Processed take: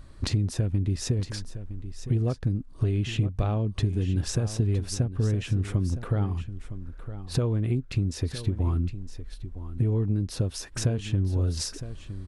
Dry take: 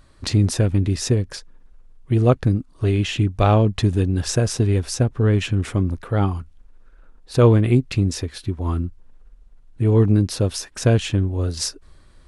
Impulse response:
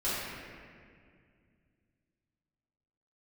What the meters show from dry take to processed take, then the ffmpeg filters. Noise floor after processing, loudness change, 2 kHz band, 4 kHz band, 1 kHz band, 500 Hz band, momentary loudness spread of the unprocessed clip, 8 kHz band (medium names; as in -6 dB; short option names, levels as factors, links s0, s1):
-45 dBFS, -8.0 dB, -10.0 dB, -7.5 dB, -14.5 dB, -12.5 dB, 10 LU, -7.5 dB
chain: -af "acompressor=threshold=0.0447:ratio=12,lowshelf=f=320:g=8,aecho=1:1:962:0.237,volume=0.841"